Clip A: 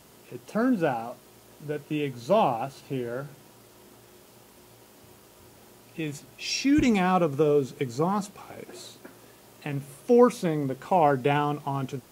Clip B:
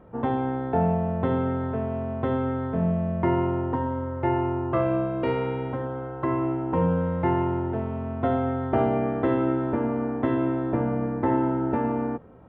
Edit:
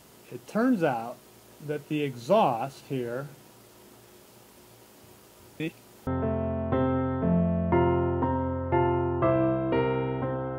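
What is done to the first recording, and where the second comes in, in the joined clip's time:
clip A
5.6–6.07 reverse
6.07 switch to clip B from 1.58 s

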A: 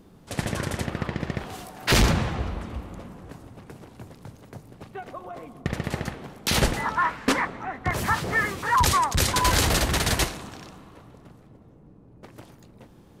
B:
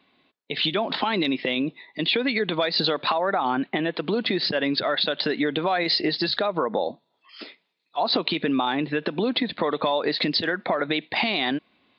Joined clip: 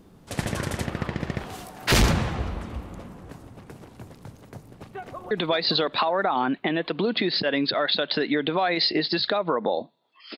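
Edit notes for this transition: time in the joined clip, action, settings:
A
4.56–5.31 echo throw 0.56 s, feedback 40%, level -6 dB
5.31 switch to B from 2.4 s

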